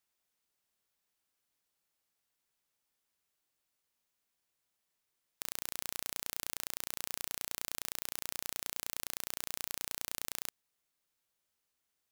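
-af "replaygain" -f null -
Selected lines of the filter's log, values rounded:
track_gain = +27.1 dB
track_peak = 0.225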